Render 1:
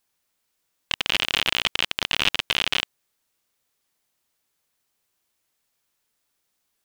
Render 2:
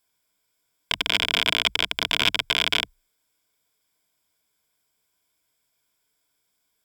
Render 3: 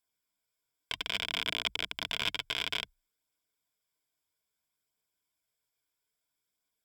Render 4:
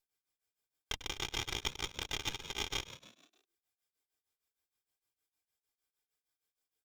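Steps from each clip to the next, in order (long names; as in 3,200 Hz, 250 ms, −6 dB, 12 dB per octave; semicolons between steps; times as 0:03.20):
EQ curve with evenly spaced ripples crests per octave 1.7, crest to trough 10 dB
flanger 0.6 Hz, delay 0 ms, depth 2.7 ms, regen −60%; level −7 dB
lower of the sound and its delayed copy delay 2.5 ms; on a send: echo with shifted repeats 101 ms, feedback 57%, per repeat +56 Hz, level −12.5 dB; on the sum: tremolo along a rectified sine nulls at 6.5 Hz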